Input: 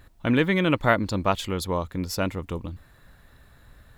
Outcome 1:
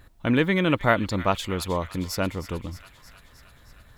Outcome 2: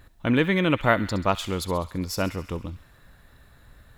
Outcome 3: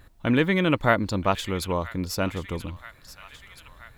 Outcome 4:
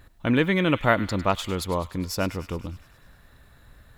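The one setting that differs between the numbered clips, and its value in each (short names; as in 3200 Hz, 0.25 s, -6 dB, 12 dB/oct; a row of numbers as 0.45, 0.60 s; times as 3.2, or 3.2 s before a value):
thin delay, time: 312, 67, 978, 102 ms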